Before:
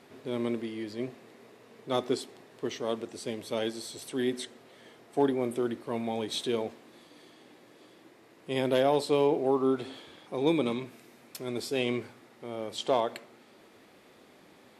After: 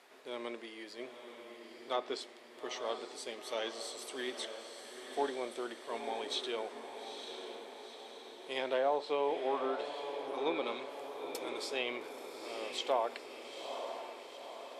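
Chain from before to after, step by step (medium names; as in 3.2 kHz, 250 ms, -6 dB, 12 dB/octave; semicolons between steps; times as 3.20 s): high-pass 610 Hz 12 dB/octave; low-pass that closes with the level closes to 1.4 kHz, closed at -24.5 dBFS; echo that smears into a reverb 899 ms, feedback 58%, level -7.5 dB; trim -2 dB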